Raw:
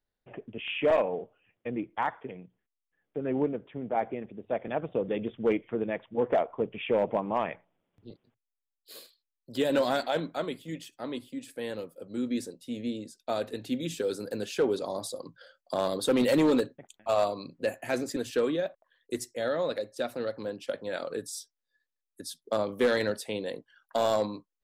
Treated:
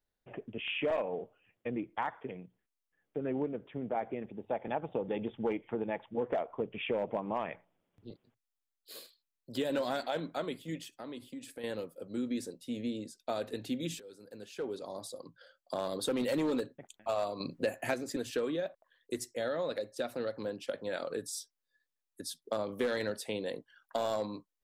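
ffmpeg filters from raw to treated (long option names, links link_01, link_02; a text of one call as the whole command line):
ffmpeg -i in.wav -filter_complex "[0:a]asettb=1/sr,asplit=3[link_01][link_02][link_03];[link_01]atrim=end=4.314[link_04];[link_02]atrim=start=4.31:end=6.09,asetpts=PTS-STARTPTS,afade=type=in:duration=0.004:curve=qsin,afade=type=out:start_time=1.776:duration=0.004:curve=qsin,equalizer=frequency=850:width=6.3:gain=12.5[link_05];[link_03]atrim=start=6.086[link_06];[link_04][link_05]acrossfade=duration=0.004:curve1=hsin:curve2=qsin[link_07];[link_07][link_06]acrossfade=duration=0.004:curve1=qsin:curve2=hsin,asettb=1/sr,asplit=3[link_08][link_09][link_10];[link_08]atrim=end=10.864[link_11];[link_09]atrim=start=10.86:end=11.64,asetpts=PTS-STARTPTS,afade=type=in:duration=0.004:curve=qsin,afade=type=out:start_time=0.776:duration=0.004:curve=qsin,acompressor=threshold=-39dB:ratio=4:attack=3.2:release=140:knee=1:detection=peak[link_12];[link_10]atrim=start=11.636[link_13];[link_11][link_12]acrossfade=duration=0.004:curve1=hsin:curve2=qsin[link_14];[link_14][link_13]acrossfade=duration=0.004:curve1=qsin:curve2=hsin,asettb=1/sr,asplit=3[link_15][link_16][link_17];[link_15]atrim=end=17.404[link_18];[link_16]atrim=start=17.4:end=17.94,asetpts=PTS-STARTPTS,afade=type=in:duration=0.004:curve=qsin,afade=type=out:start_time=0.536:duration=0.004:curve=qsin,acontrast=67[link_19];[link_17]atrim=start=17.936[link_20];[link_18][link_19]acrossfade=duration=0.004:curve1=hsin:curve2=qsin[link_21];[link_21][link_20]acrossfade=duration=0.004:curve1=qsin:curve2=hsin,asplit=2[link_22][link_23];[link_22]atrim=end=14,asetpts=PTS-STARTPTS,afade=type=out:start_time=13.996:duration=0.004:curve=hsin:silence=0.0707946[link_24];[link_23]atrim=start=14,asetpts=PTS-STARTPTS,afade=type=in:duration=2.41:silence=0.0707946[link_25];[link_24][link_25]concat=n=2:v=0:a=1,acompressor=threshold=-31dB:ratio=2.5,volume=-1dB" out.wav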